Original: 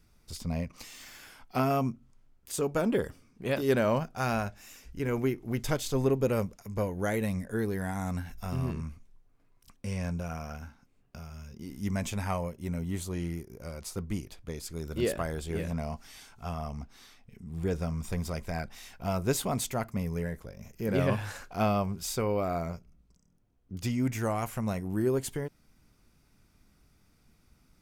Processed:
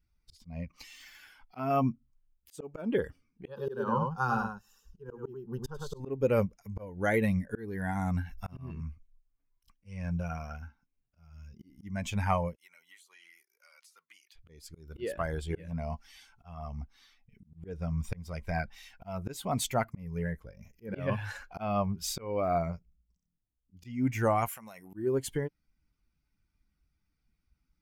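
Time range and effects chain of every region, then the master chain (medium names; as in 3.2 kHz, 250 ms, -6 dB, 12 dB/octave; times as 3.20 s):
3.47–6.00 s: treble shelf 4.2 kHz -6 dB + static phaser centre 430 Hz, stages 8 + delay 102 ms -4 dB
12.55–14.36 s: high-pass 1.3 kHz + compression 10:1, threshold -48 dBFS
24.48–24.94 s: high-pass 730 Hz 6 dB/octave + compression 12:1, threshold -39 dBFS + treble shelf 7.9 kHz +9.5 dB
whole clip: expander on every frequency bin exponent 1.5; slow attack 371 ms; tone controls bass -3 dB, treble -7 dB; trim +8.5 dB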